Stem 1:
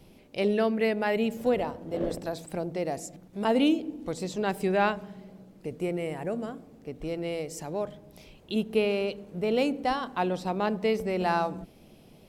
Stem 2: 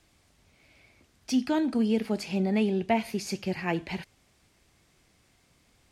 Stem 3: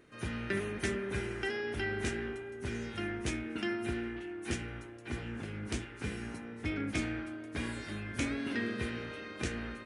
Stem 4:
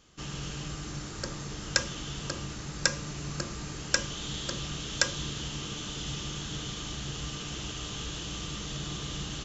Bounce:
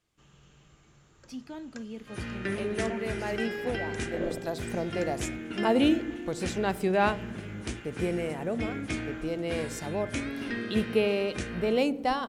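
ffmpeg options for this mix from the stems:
-filter_complex "[0:a]agate=range=0.0224:threshold=0.00355:ratio=3:detection=peak,adelay=2200,volume=1[s0];[1:a]volume=0.178,asplit=2[s1][s2];[2:a]adelay=1950,volume=1.12[s3];[3:a]equalizer=f=5100:w=1.7:g=-10,bandreject=f=50:t=h:w=6,bandreject=f=100:t=h:w=6,bandreject=f=150:t=h:w=6,bandreject=f=200:t=h:w=6,bandreject=f=250:t=h:w=6,bandreject=f=300:t=h:w=6,volume=0.106[s4];[s2]apad=whole_len=638622[s5];[s0][s5]sidechaincompress=threshold=0.00447:ratio=4:attack=16:release=874[s6];[s6][s1][s3][s4]amix=inputs=4:normalize=0"

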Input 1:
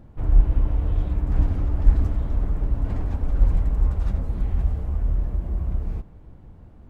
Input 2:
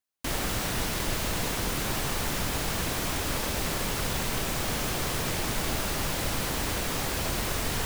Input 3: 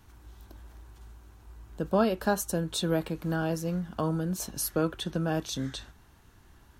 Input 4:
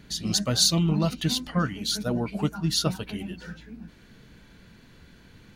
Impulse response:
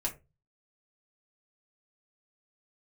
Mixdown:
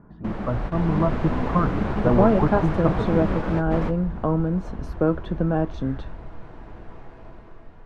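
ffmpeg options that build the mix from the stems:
-filter_complex "[0:a]adelay=250,volume=0.1[s0];[1:a]volume=0.841,asplit=2[s1][s2];[s2]volume=0.0668[s3];[2:a]adelay=250,volume=1[s4];[3:a]acompressor=threshold=0.0562:ratio=6,lowpass=f=1100:t=q:w=2.6,volume=0.891,asplit=3[s5][s6][s7];[s6]volume=0.251[s8];[s7]apad=whole_len=346229[s9];[s1][s9]sidechaingate=range=0.0631:threshold=0.00708:ratio=16:detection=peak[s10];[4:a]atrim=start_sample=2205[s11];[s3][s8]amix=inputs=2:normalize=0[s12];[s12][s11]afir=irnorm=-1:irlink=0[s13];[s0][s10][s4][s5][s13]amix=inputs=5:normalize=0,lowpass=1200,dynaudnorm=f=330:g=5:m=2.24"

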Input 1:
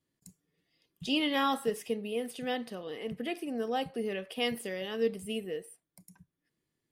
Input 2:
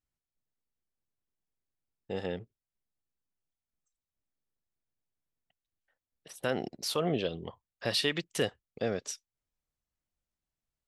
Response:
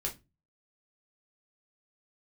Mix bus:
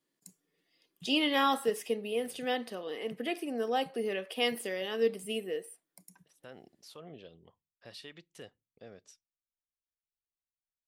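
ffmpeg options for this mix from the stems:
-filter_complex "[0:a]highpass=260,volume=1.26,asplit=2[s0][s1];[1:a]volume=0.106,asplit=2[s2][s3];[s3]volume=0.0841[s4];[s1]apad=whole_len=479713[s5];[s2][s5]sidechaincompress=threshold=0.0141:ratio=8:attack=16:release=857[s6];[2:a]atrim=start_sample=2205[s7];[s4][s7]afir=irnorm=-1:irlink=0[s8];[s0][s6][s8]amix=inputs=3:normalize=0"

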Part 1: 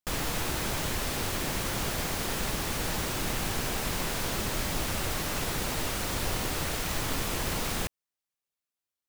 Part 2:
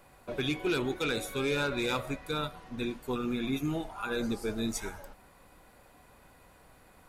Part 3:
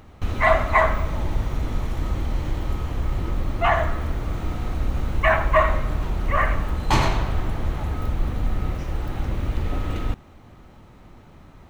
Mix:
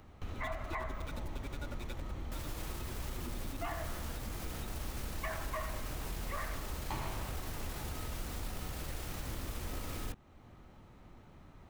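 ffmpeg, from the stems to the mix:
-filter_complex "[0:a]equalizer=f=14000:t=o:w=0.77:g=3,adelay=2250,volume=0.668[s0];[1:a]aecho=1:1:3.5:0.65,aeval=exprs='val(0)*pow(10,-22*(0.5-0.5*cos(2*PI*11*n/s))/20)':c=same,volume=0.422,asplit=2[s1][s2];[2:a]acrossover=split=180|2600[s3][s4][s5];[s3]acompressor=threshold=0.0794:ratio=4[s6];[s4]acompressor=threshold=0.0708:ratio=4[s7];[s5]acompressor=threshold=0.0112:ratio=4[s8];[s6][s7][s8]amix=inputs=3:normalize=0,volume=0.355[s9];[s2]apad=whole_len=499910[s10];[s0][s10]sidechaincompress=threshold=0.00562:ratio=8:attack=27:release=314[s11];[s11][s1]amix=inputs=2:normalize=0,aeval=exprs='val(0)*gte(abs(val(0)),0.00891)':c=same,alimiter=level_in=2.24:limit=0.0631:level=0:latency=1:release=18,volume=0.447,volume=1[s12];[s9][s12]amix=inputs=2:normalize=0,acompressor=threshold=0.00447:ratio=1.5"

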